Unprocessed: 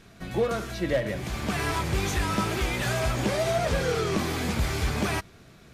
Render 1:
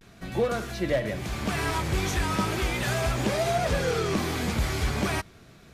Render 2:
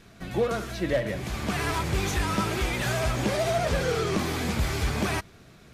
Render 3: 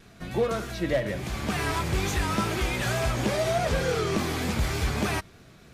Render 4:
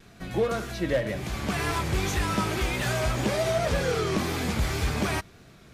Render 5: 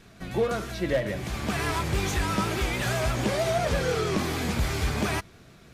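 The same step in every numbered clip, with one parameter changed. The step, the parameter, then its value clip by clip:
vibrato, rate: 0.36 Hz, 15 Hz, 3.4 Hz, 1.9 Hz, 6.2 Hz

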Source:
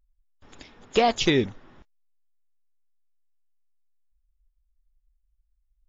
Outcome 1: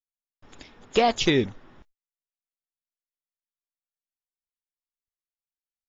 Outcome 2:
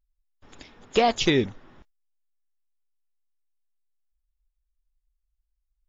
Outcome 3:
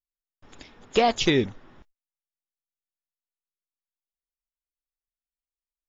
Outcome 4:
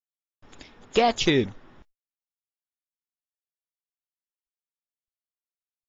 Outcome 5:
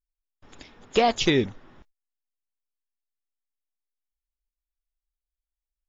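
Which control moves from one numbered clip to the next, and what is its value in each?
gate, range: -46 dB, -7 dB, -34 dB, -60 dB, -20 dB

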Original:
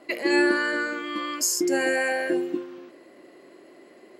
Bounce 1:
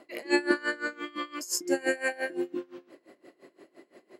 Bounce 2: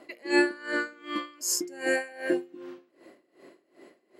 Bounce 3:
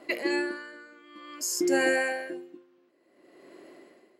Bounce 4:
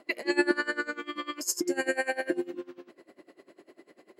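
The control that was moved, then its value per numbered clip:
logarithmic tremolo, rate: 5.8 Hz, 2.6 Hz, 0.55 Hz, 10 Hz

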